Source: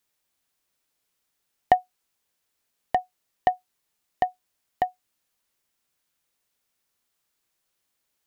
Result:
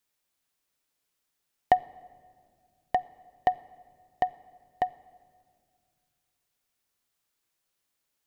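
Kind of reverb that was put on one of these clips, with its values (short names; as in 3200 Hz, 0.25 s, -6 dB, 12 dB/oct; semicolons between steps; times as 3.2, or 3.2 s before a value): shoebox room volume 3500 m³, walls mixed, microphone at 0.3 m; gain -3 dB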